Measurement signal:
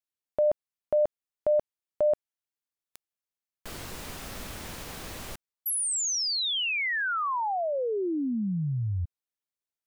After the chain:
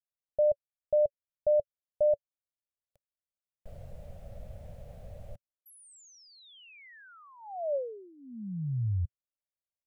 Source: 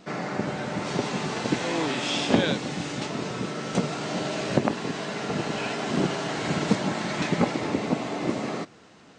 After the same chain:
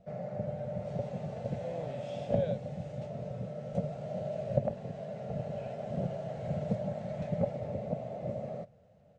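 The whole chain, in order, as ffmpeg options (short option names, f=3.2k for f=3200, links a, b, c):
-af "firequalizer=gain_entry='entry(110,0);entry(220,-12);entry(310,-28);entry(570,1);entry(980,-26);entry(2000,-24);entry(4700,-29);entry(8000,-27)':delay=0.05:min_phase=1"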